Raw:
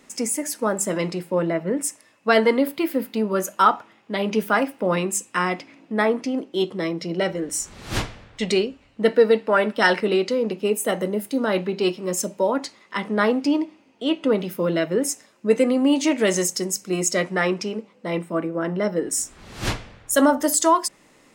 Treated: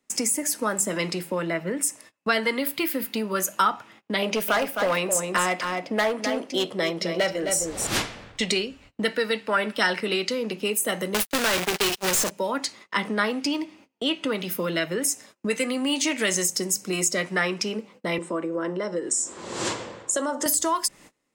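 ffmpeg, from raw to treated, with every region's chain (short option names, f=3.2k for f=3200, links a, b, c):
-filter_complex "[0:a]asettb=1/sr,asplit=3[a][b][c];[a]atrim=end=4.224[d];[b]atrim=start=4.22:end=7.87,asetpts=PTS-STARTPTS,afade=t=in:d=0.004:c=qsin,afade=t=out:st=3.646:d=0.004:c=qsin,volume=16dB,asoftclip=hard,volume=-16dB,equalizer=f=610:t=o:w=1:g=12,aecho=1:1:262:0.355,atrim=end_sample=160965[e];[c]atrim=start=7.866[f];[d][e]acrossfade=d=0.004:c1=hsin:c2=qsin[g];[g][f]acrossfade=d=0.004:c1=qsin:c2=hsin,asettb=1/sr,asplit=3[h][i][j];[h]atrim=end=11.144[k];[i]atrim=start=11.14:end=12.31,asetpts=PTS-STARTPTS,afade=t=in:d=0.004:c=qsin,afade=t=out:st=1.166:d=0.004:c=qsin,acrusher=bits=4:dc=4:mix=0:aa=0.000001,agate=range=-41dB:threshold=-33dB:ratio=16:release=100:detection=peak,asplit=2[l][m];[m]highpass=f=720:p=1,volume=35dB,asoftclip=type=tanh:threshold=-10.5dB[n];[l][n]amix=inputs=2:normalize=0,lowpass=f=7.5k:p=1,volume=-6dB[o];[j]atrim=start=12.306[p];[k][o]acrossfade=d=0.004:c1=hsin:c2=qsin[q];[q][p]acrossfade=d=0.004:c1=qsin:c2=hsin,asettb=1/sr,asplit=3[r][s][t];[r]atrim=end=18.184[u];[s]atrim=start=18.18:end=20.46,asetpts=PTS-STARTPTS,afade=t=in:d=0.004:c=qsin,afade=t=out:st=2.276:d=0.004:c=qsin,acompressor=threshold=-32dB:ratio=2:attack=3.2:release=140:knee=1:detection=peak,highpass=160,equalizer=f=350:t=q:w=4:g=9,equalizer=f=520:t=q:w=4:g=10,equalizer=f=1k:t=q:w=4:g=8,equalizer=f=2.4k:t=q:w=4:g=-3,equalizer=f=7.5k:t=q:w=4:g=9,lowpass=f=8.9k:w=0.5412,lowpass=f=8.9k:w=1.3066[v];[t]atrim=start=20.456[w];[u][v]acrossfade=d=0.004:c1=hsin:c2=qsin[x];[x][w]acrossfade=d=0.004:c1=qsin:c2=hsin,agate=range=-27dB:threshold=-48dB:ratio=16:detection=peak,highshelf=f=6.6k:g=4.5,acrossover=split=160|1300[y][z][aa];[y]acompressor=threshold=-46dB:ratio=4[ab];[z]acompressor=threshold=-33dB:ratio=4[ac];[aa]acompressor=threshold=-27dB:ratio=4[ad];[ab][ac][ad]amix=inputs=3:normalize=0,volume=4.5dB"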